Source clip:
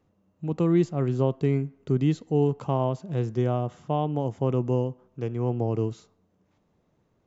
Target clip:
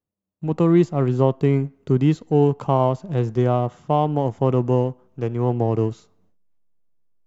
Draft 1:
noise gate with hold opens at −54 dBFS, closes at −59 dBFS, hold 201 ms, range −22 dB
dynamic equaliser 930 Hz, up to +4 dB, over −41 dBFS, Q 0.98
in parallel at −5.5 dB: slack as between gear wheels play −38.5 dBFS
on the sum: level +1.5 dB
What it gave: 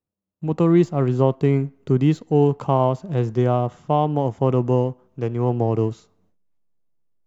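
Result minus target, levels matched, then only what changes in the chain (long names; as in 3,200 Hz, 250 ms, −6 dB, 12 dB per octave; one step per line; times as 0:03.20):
slack as between gear wheels: distortion −5 dB
change: slack as between gear wheels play −32.5 dBFS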